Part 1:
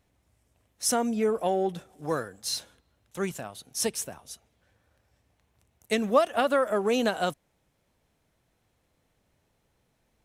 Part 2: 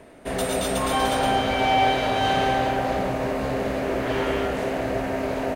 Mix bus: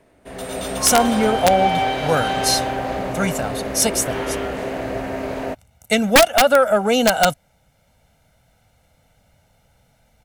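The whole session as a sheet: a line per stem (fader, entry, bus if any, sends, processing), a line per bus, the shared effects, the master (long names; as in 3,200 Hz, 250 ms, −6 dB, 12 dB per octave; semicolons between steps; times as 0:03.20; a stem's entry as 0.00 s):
+1.5 dB, 0.00 s, no send, comb filter 1.4 ms, depth 71%; soft clipping −11 dBFS, distortion −22 dB
−9.0 dB, 0.00 s, no send, no processing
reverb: not used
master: automatic gain control gain up to 9 dB; wrap-around overflow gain 5 dB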